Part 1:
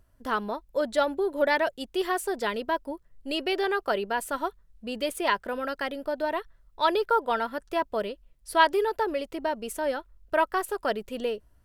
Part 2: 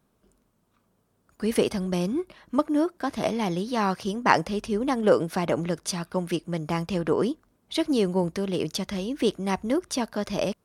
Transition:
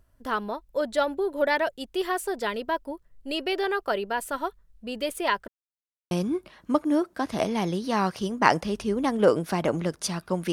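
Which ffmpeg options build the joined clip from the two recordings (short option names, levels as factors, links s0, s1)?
-filter_complex "[0:a]apad=whole_dur=10.52,atrim=end=10.52,asplit=2[s0][s1];[s0]atrim=end=5.48,asetpts=PTS-STARTPTS,afade=t=out:st=5.476:d=0.004:c=hsin[s2];[s1]atrim=start=5.48:end=6.11,asetpts=PTS-STARTPTS,volume=0[s3];[1:a]atrim=start=1.95:end=6.36,asetpts=PTS-STARTPTS,afade=t=in:d=0.004:c=hsin[s4];[s2][s3][s4]concat=n=3:v=0:a=1"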